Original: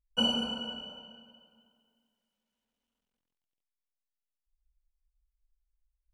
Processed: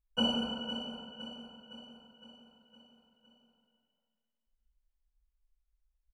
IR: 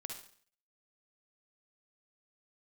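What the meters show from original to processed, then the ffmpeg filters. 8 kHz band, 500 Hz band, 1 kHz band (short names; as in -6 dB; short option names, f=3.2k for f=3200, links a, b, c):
-6.0 dB, 0.0 dB, 0.0 dB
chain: -af "highshelf=f=2.9k:g=-7.5,aecho=1:1:511|1022|1533|2044|2555|3066:0.282|0.155|0.0853|0.0469|0.0258|0.0142"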